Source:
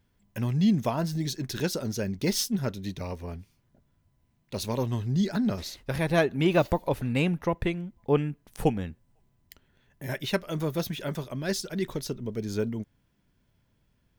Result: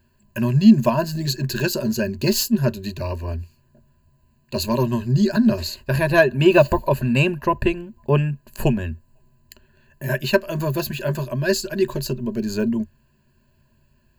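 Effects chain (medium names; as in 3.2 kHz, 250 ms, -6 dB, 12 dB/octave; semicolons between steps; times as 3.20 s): rippled EQ curve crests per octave 1.4, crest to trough 16 dB; trim +5 dB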